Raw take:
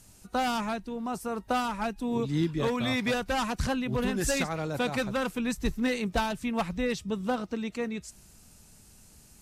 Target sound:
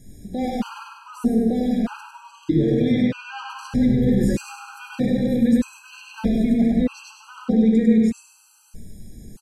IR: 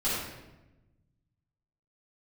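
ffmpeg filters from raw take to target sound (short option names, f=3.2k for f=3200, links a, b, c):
-filter_complex "[0:a]asettb=1/sr,asplit=3[a][b][c];[a]atrim=end=2.924[d];[b]atrim=start=2.92:end=3.5,asetpts=PTS-STARTPTS,afade=t=in:d=0.004:c=qsin,afade=t=out:st=0.576:d=0.004:c=qsin,highpass=130,lowpass=4.2k[e];[c]atrim=start=3.496[f];[d][e]acrossfade=d=0.004:c1=hsin:c2=qsin[g];[g][f]acrossfade=d=0.004:c1=qsin:c2=hsin,asplit=2[h][i];[i]aecho=0:1:100|200|300|400|500:0.708|0.283|0.113|0.0453|0.0181[j];[h][j]amix=inputs=2:normalize=0,alimiter=level_in=1dB:limit=-24dB:level=0:latency=1:release=23,volume=-1dB,lowshelf=f=510:t=q:w=1.5:g=9.5,aecho=1:1:149:0.224,asplit=2[k][l];[1:a]atrim=start_sample=2205[m];[l][m]afir=irnorm=-1:irlink=0,volume=-10.5dB[n];[k][n]amix=inputs=2:normalize=0,afftfilt=real='re*gt(sin(2*PI*0.8*pts/sr)*(1-2*mod(floor(b*sr/1024/810),2)),0)':imag='im*gt(sin(2*PI*0.8*pts/sr)*(1-2*mod(floor(b*sr/1024/810),2)),0)':win_size=1024:overlap=0.75"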